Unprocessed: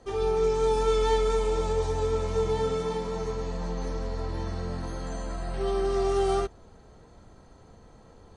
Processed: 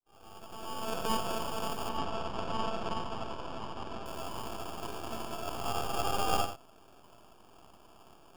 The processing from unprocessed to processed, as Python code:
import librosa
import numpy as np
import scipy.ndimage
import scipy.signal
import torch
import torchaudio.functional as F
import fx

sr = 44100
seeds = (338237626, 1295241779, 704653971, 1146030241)

y = fx.fade_in_head(x, sr, length_s=2.04)
y = scipy.signal.sosfilt(scipy.signal.butter(16, 620.0, 'highpass', fs=sr, output='sos'), y)
y = fx.tilt_eq(y, sr, slope=2.0)
y = fx.sample_hold(y, sr, seeds[0], rate_hz=2000.0, jitter_pct=0)
y = np.maximum(y, 0.0)
y = fx.air_absorb(y, sr, metres=120.0, at=(1.89, 4.06))
y = y + 10.0 ** (-9.5 / 20.0) * np.pad(y, (int(89 * sr / 1000.0), 0))[:len(y)]
y = F.gain(torch.from_numpy(y), 6.0).numpy()